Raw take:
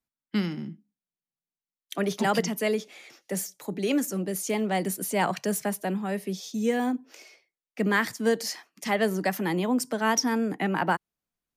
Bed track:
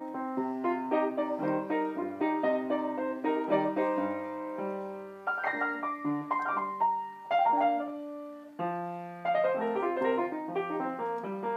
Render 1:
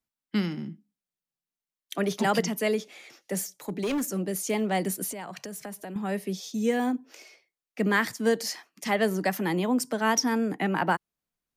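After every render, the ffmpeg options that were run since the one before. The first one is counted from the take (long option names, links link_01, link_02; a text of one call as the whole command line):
ffmpeg -i in.wav -filter_complex "[0:a]asettb=1/sr,asplit=3[link_01][link_02][link_03];[link_01]atrim=end=3.524[link_04];[link_02]atrim=start=3.52:end=4.12,asetpts=PTS-STARTPTS,afade=type=in:duration=0.004:curve=qsin,afade=type=out:start_time=0.596:duration=0.004:curve=qsin,volume=24.5dB,asoftclip=hard,volume=-24.5dB[link_05];[link_03]atrim=start=4.116[link_06];[link_04][link_05]acrossfade=duration=0.004:curve1=hsin:curve2=qsin[link_07];[link_07][link_06]acrossfade=duration=0.004:curve1=qsin:curve2=hsin,asettb=1/sr,asplit=3[link_08][link_09][link_10];[link_08]atrim=end=5.114[link_11];[link_09]atrim=start=5.11:end=5.96,asetpts=PTS-STARTPTS,afade=type=in:duration=0.004:curve=qsin,afade=type=out:start_time=0.846:duration=0.004:curve=qsin,acompressor=threshold=-35dB:ratio=6:attack=3.2:release=140:knee=1:detection=peak[link_12];[link_10]atrim=start=5.956[link_13];[link_11][link_12]acrossfade=duration=0.004:curve1=hsin:curve2=qsin[link_14];[link_14][link_13]acrossfade=duration=0.004:curve1=qsin:curve2=hsin" out.wav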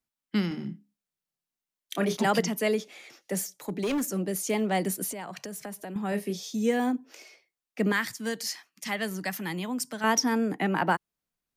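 ffmpeg -i in.wav -filter_complex "[0:a]asettb=1/sr,asplit=3[link_01][link_02][link_03];[link_01]atrim=end=0.484[link_04];[link_02]atrim=start=0.48:end=2.17,asetpts=PTS-STARTPTS,afade=type=in:duration=0.004:curve=qsin,afade=type=out:start_time=1.686:duration=0.004:curve=qsin,asplit=2[link_05][link_06];[link_06]adelay=29,volume=-6.5dB[link_07];[link_05][link_07]amix=inputs=2:normalize=0,atrim=end_sample=74529[link_08];[link_03]atrim=start=2.166[link_09];[link_04][link_08]acrossfade=duration=0.004:curve1=hsin:curve2=qsin[link_10];[link_10][link_09]acrossfade=duration=0.004:curve1=qsin:curve2=hsin,asettb=1/sr,asplit=3[link_11][link_12][link_13];[link_11]atrim=end=6.094[link_14];[link_12]atrim=start=6.09:end=6.56,asetpts=PTS-STARTPTS,afade=type=in:duration=0.004:curve=qsin,afade=type=out:start_time=0.466:duration=0.004:curve=qsin,asplit=2[link_15][link_16];[link_16]adelay=29,volume=-7.5dB[link_17];[link_15][link_17]amix=inputs=2:normalize=0,atrim=end_sample=20727[link_18];[link_13]atrim=start=6.556[link_19];[link_14][link_18]acrossfade=duration=0.004:curve1=hsin:curve2=qsin[link_20];[link_20][link_19]acrossfade=duration=0.004:curve1=qsin:curve2=hsin,asettb=1/sr,asplit=3[link_21][link_22][link_23];[link_21]atrim=end=7.924[link_24];[link_22]atrim=start=7.92:end=10.04,asetpts=PTS-STARTPTS,afade=type=in:duration=0.004:curve=qsin,afade=type=out:start_time=2.116:duration=0.004:curve=qsin,equalizer=frequency=460:width=0.52:gain=-10.5[link_25];[link_23]atrim=start=10.036[link_26];[link_24][link_25]acrossfade=duration=0.004:curve1=hsin:curve2=qsin[link_27];[link_27][link_26]acrossfade=duration=0.004:curve1=qsin:curve2=hsin" out.wav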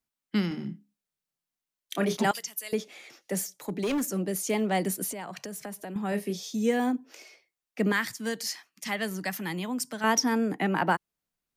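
ffmpeg -i in.wav -filter_complex "[0:a]asettb=1/sr,asplit=3[link_01][link_02][link_03];[link_01]atrim=end=2.314[link_04];[link_02]atrim=start=2.31:end=2.73,asetpts=PTS-STARTPTS,afade=type=in:duration=0.004:curve=qsin,afade=type=out:start_time=0.416:duration=0.004:curve=qsin,aderivative[link_05];[link_03]atrim=start=2.726[link_06];[link_04][link_05]acrossfade=duration=0.004:curve1=hsin:curve2=qsin[link_07];[link_07][link_06]acrossfade=duration=0.004:curve1=qsin:curve2=hsin" out.wav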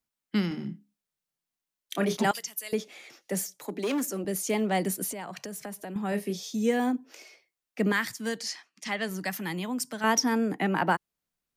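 ffmpeg -i in.wav -filter_complex "[0:a]asettb=1/sr,asplit=3[link_01][link_02][link_03];[link_01]atrim=end=3.654[link_04];[link_02]atrim=start=3.65:end=4.25,asetpts=PTS-STARTPTS,afade=type=in:duration=0.004:curve=qsin,afade=type=out:start_time=0.596:duration=0.004:curve=qsin,highpass=frequency=220:width=0.5412,highpass=frequency=220:width=1.3066[link_05];[link_03]atrim=start=4.246[link_06];[link_04][link_05]acrossfade=duration=0.004:curve1=hsin:curve2=qsin[link_07];[link_07][link_06]acrossfade=duration=0.004:curve1=qsin:curve2=hsin,asplit=3[link_08][link_09][link_10];[link_08]afade=type=out:start_time=8.38:duration=0.02[link_11];[link_09]highpass=160,lowpass=7400,afade=type=in:start_time=8.38:duration=0.02,afade=type=out:start_time=9.08:duration=0.02[link_12];[link_10]afade=type=in:start_time=9.08:duration=0.02[link_13];[link_11][link_12][link_13]amix=inputs=3:normalize=0" out.wav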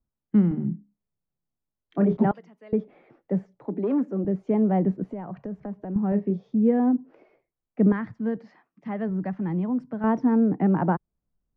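ffmpeg -i in.wav -af "lowpass=1100,aemphasis=mode=reproduction:type=riaa" out.wav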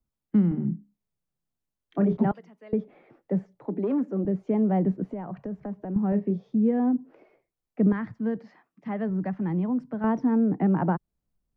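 ffmpeg -i in.wav -filter_complex "[0:a]acrossover=split=190|3000[link_01][link_02][link_03];[link_02]acompressor=threshold=-25dB:ratio=2[link_04];[link_01][link_04][link_03]amix=inputs=3:normalize=0" out.wav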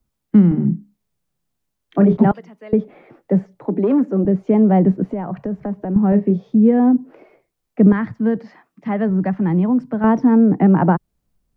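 ffmpeg -i in.wav -af "volume=10dB" out.wav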